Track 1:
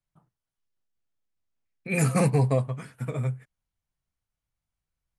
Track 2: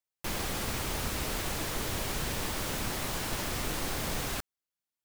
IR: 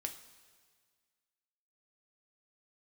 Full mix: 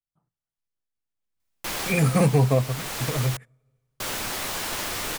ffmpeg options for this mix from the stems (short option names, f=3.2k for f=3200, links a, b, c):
-filter_complex "[0:a]deesser=0.65,volume=-7.5dB,afade=t=in:st=1.13:d=0.38:silence=0.354813,asplit=3[a][b][c];[b]volume=-18dB[d];[1:a]lowshelf=f=330:g=-11.5,flanger=delay=3.8:depth=8.9:regen=-70:speed=0.46:shape=triangular,adelay=1400,volume=0.5dB,asplit=3[e][f][g];[e]atrim=end=3.37,asetpts=PTS-STARTPTS,afade=t=out:st=3.366:d=0.004:c=hsin[h];[f]atrim=start=3.37:end=4,asetpts=PTS-STARTPTS,volume=0[i];[g]atrim=start=4,asetpts=PTS-STARTPTS,afade=t=in:d=0.004:c=hsin[j];[h][i][j]concat=n=3:v=0:a=1[k];[c]apad=whole_len=284317[l];[k][l]sidechaincompress=threshold=-32dB:ratio=10:attack=7.8:release=718[m];[2:a]atrim=start_sample=2205[n];[d][n]afir=irnorm=-1:irlink=0[o];[a][m][o]amix=inputs=3:normalize=0,dynaudnorm=f=140:g=3:m=10dB"